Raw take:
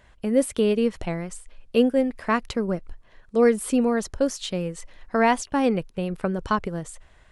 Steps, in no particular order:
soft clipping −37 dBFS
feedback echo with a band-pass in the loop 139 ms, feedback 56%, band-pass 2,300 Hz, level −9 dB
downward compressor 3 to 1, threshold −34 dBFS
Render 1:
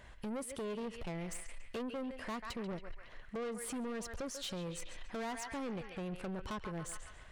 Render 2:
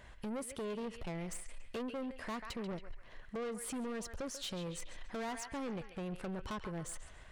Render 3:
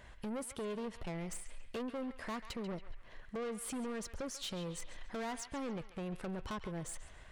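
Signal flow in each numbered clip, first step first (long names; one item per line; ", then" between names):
feedback echo with a band-pass in the loop, then downward compressor, then soft clipping
downward compressor, then feedback echo with a band-pass in the loop, then soft clipping
downward compressor, then soft clipping, then feedback echo with a band-pass in the loop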